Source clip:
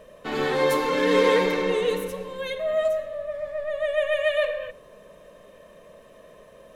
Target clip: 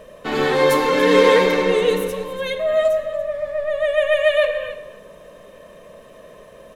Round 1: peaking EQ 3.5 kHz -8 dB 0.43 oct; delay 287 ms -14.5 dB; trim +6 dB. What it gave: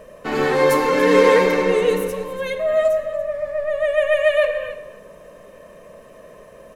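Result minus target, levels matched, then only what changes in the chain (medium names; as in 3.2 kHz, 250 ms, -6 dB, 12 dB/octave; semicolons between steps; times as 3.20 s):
4 kHz band -5.0 dB
remove: peaking EQ 3.5 kHz -8 dB 0.43 oct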